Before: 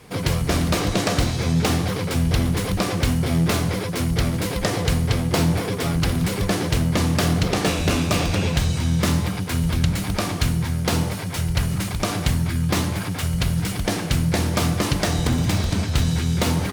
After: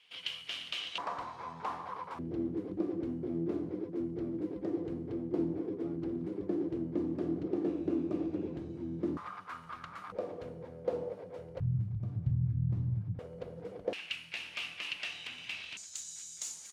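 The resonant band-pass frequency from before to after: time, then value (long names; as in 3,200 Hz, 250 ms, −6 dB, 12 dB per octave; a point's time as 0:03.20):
resonant band-pass, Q 7.6
3,000 Hz
from 0:00.98 1,000 Hz
from 0:02.19 330 Hz
from 0:09.17 1,200 Hz
from 0:10.12 500 Hz
from 0:11.60 120 Hz
from 0:13.19 490 Hz
from 0:13.93 2,700 Hz
from 0:15.77 7,000 Hz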